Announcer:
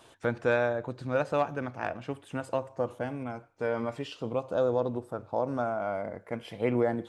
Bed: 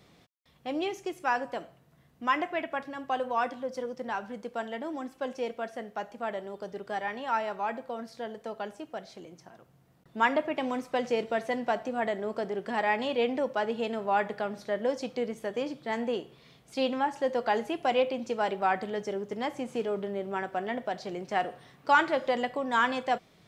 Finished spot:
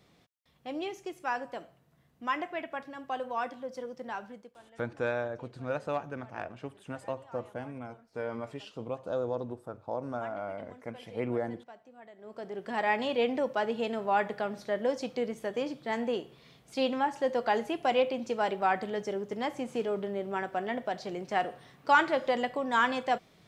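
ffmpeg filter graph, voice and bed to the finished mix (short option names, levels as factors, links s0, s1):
-filter_complex "[0:a]adelay=4550,volume=0.531[s0];[1:a]volume=7.08,afade=t=out:st=4.24:d=0.31:silence=0.133352,afade=t=in:st=12.16:d=0.75:silence=0.0841395[s1];[s0][s1]amix=inputs=2:normalize=0"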